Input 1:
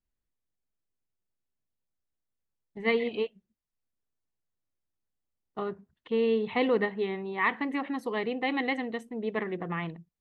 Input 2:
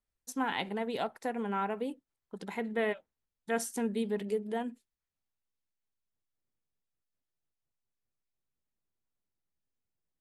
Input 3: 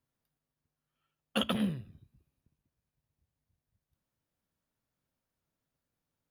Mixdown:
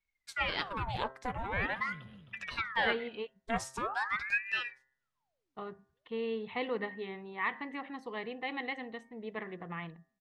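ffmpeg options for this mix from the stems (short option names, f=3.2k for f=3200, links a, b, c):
-filter_complex "[0:a]volume=-6dB[a];[1:a]aecho=1:1:6.4:0.46,aeval=exprs='val(0)*sin(2*PI*1200*n/s+1200*0.85/0.44*sin(2*PI*0.44*n/s))':c=same,volume=2.5dB,asplit=2[b][c];[2:a]alimiter=level_in=4dB:limit=-24dB:level=0:latency=1:release=26,volume=-4dB,adelay=250,volume=-6.5dB,asplit=2[d][e];[e]volume=-10.5dB[f];[c]apad=whole_len=289186[g];[d][g]sidechaincompress=threshold=-36dB:ratio=8:attack=16:release=260[h];[f]aecho=0:1:263|526|789|1052|1315:1|0.33|0.109|0.0359|0.0119[i];[a][b][h][i]amix=inputs=4:normalize=0,lowpass=6k,equalizer=f=310:t=o:w=1.6:g=-5.5,bandreject=f=132.1:t=h:w=4,bandreject=f=264.2:t=h:w=4,bandreject=f=396.3:t=h:w=4,bandreject=f=528.4:t=h:w=4,bandreject=f=660.5:t=h:w=4,bandreject=f=792.6:t=h:w=4,bandreject=f=924.7:t=h:w=4,bandreject=f=1.0568k:t=h:w=4,bandreject=f=1.1889k:t=h:w=4,bandreject=f=1.321k:t=h:w=4,bandreject=f=1.4531k:t=h:w=4,bandreject=f=1.5852k:t=h:w=4,bandreject=f=1.7173k:t=h:w=4,bandreject=f=1.8494k:t=h:w=4,bandreject=f=1.9815k:t=h:w=4"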